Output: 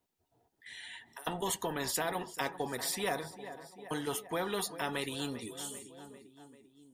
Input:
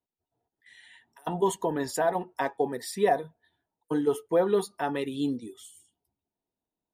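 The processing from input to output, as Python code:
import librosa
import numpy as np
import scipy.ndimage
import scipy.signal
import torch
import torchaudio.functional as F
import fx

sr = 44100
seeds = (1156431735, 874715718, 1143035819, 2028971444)

y = fx.echo_feedback(x, sr, ms=394, feedback_pct=54, wet_db=-23.0)
y = fx.spectral_comp(y, sr, ratio=2.0)
y = F.gain(torch.from_numpy(y), -4.0).numpy()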